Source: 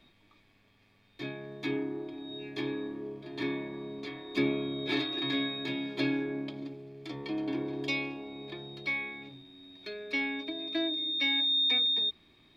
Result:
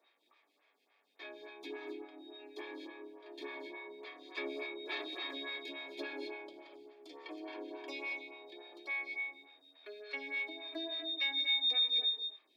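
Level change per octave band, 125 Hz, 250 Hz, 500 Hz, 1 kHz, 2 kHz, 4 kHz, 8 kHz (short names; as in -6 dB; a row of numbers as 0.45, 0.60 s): under -40 dB, -15.5 dB, -8.0 dB, -5.0 dB, -4.5 dB, -5.0 dB, n/a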